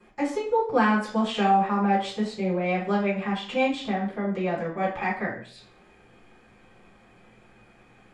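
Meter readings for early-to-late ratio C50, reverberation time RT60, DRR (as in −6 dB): 6.5 dB, 0.50 s, −12.0 dB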